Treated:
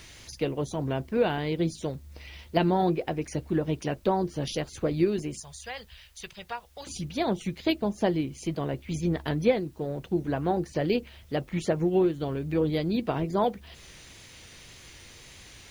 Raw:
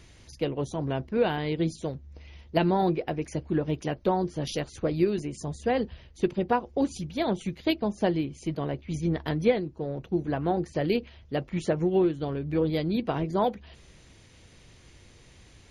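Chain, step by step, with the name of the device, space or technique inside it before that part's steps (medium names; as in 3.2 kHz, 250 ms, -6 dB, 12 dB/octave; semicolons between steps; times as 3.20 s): 5.40–6.87 s: amplifier tone stack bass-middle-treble 10-0-10; noise-reduction cassette on a plain deck (tape noise reduction on one side only encoder only; wow and flutter; white noise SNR 37 dB)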